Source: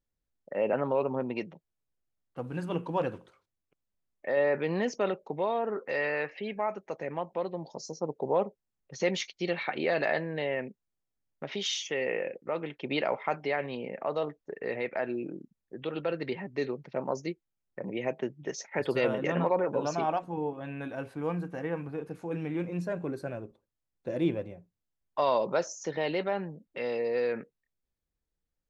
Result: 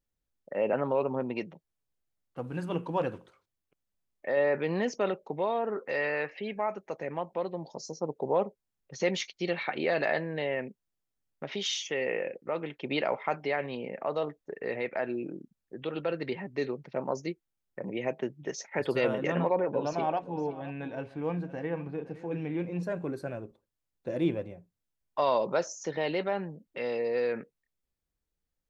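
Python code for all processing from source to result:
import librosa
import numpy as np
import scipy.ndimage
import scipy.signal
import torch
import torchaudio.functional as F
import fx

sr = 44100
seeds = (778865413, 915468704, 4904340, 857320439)

y = fx.chain(x, sr, fx.lowpass(hz=4800.0, slope=12),
    fx.peak_eq(hz=1300.0, db=-6.0, octaves=0.44),
    fx.echo_single(ms=515, db=-16.5), at=(19.41, 22.83))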